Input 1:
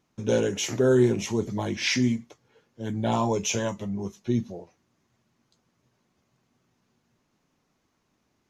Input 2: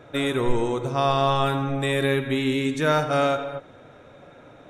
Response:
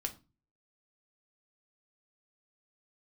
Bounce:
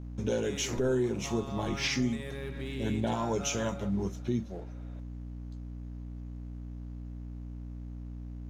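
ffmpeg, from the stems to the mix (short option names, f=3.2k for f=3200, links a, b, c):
-filter_complex "[0:a]aeval=exprs='val(0)+0.0126*(sin(2*PI*60*n/s)+sin(2*PI*2*60*n/s)/2+sin(2*PI*3*60*n/s)/3+sin(2*PI*4*60*n/s)/4+sin(2*PI*5*60*n/s)/5)':c=same,volume=-2dB,asplit=2[a][b];[b]volume=-12dB[c];[1:a]alimiter=limit=-17.5dB:level=0:latency=1:release=124,adelay=300,volume=-14dB,asplit=2[d][e];[e]volume=-6dB[f];[2:a]atrim=start_sample=2205[g];[c][f]amix=inputs=2:normalize=0[h];[h][g]afir=irnorm=-1:irlink=0[i];[a][d][i]amix=inputs=3:normalize=0,aeval=exprs='sgn(val(0))*max(abs(val(0))-0.00188,0)':c=same,alimiter=limit=-20dB:level=0:latency=1:release=487"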